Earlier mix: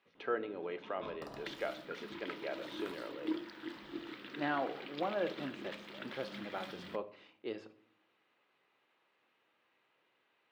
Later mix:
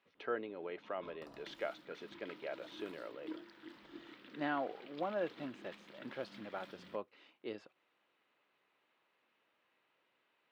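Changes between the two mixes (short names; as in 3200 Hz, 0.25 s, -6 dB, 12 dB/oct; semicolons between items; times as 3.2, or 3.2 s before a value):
background -7.5 dB; reverb: off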